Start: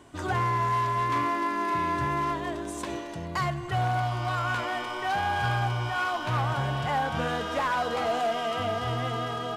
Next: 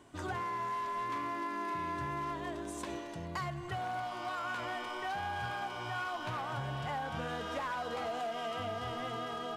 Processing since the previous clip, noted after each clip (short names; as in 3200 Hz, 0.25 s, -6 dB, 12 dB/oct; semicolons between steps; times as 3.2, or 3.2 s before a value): notches 60/120 Hz; compressor, threshold -28 dBFS, peak gain reduction 5 dB; gain -6 dB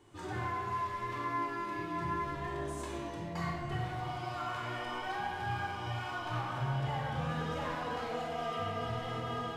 shoebox room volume 1800 m³, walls mixed, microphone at 4.1 m; gain -6.5 dB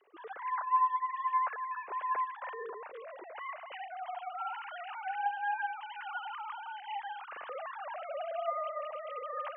sine-wave speech